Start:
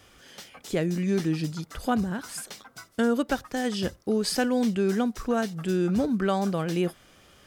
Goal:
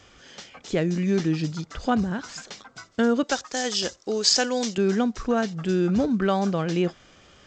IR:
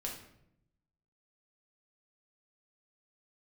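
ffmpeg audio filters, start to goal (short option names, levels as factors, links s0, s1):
-filter_complex "[0:a]asettb=1/sr,asplit=3[s0][s1][s2];[s0]atrim=end=3.234[s3];[s1]atrim=start=3.23:end=4.78,asetpts=PTS-STARTPTS,afade=t=in:d=0.004:c=qsin,afade=t=out:st=1.546:d=0.004:c=qsin,bass=f=250:g=-14,treble=f=4000:g=14[s4];[s2]atrim=start=4.776[s5];[s3][s4]acrossfade=d=0.004:c1=hsin:c2=qsin[s6];[s6][s5]acrossfade=d=0.004:c1=qsin:c2=hsin,volume=1.33" -ar 16000 -c:a g722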